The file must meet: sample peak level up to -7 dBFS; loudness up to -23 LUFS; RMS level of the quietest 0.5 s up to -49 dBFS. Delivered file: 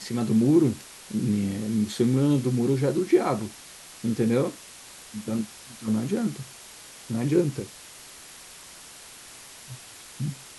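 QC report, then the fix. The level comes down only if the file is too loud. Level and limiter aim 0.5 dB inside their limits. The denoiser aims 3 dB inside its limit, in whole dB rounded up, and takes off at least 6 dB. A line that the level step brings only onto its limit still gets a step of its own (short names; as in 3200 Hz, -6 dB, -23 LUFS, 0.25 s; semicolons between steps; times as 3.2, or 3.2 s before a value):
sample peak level -9.0 dBFS: OK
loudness -25.5 LUFS: OK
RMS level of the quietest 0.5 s -46 dBFS: fail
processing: denoiser 6 dB, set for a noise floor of -46 dBFS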